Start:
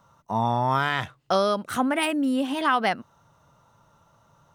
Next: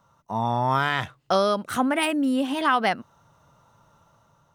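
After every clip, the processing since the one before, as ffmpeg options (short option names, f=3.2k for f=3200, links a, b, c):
-af "dynaudnorm=f=140:g=7:m=4dB,volume=-3dB"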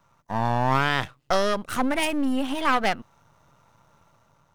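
-af "aeval=exprs='if(lt(val(0),0),0.251*val(0),val(0))':c=same,volume=2.5dB"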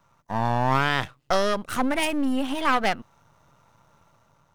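-af anull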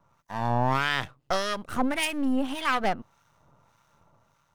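-filter_complex "[0:a]acrossover=split=1200[a][b];[a]aeval=exprs='val(0)*(1-0.7/2+0.7/2*cos(2*PI*1.7*n/s))':c=same[c];[b]aeval=exprs='val(0)*(1-0.7/2-0.7/2*cos(2*PI*1.7*n/s))':c=same[d];[c][d]amix=inputs=2:normalize=0"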